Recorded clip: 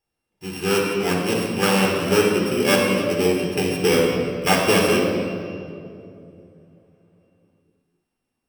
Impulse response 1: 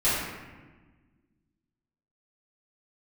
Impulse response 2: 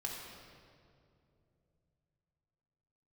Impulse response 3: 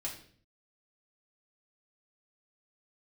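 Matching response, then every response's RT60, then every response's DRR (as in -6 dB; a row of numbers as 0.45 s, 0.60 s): 2; 1.3 s, 2.6 s, 0.50 s; -14.0 dB, -1.5 dB, -3.5 dB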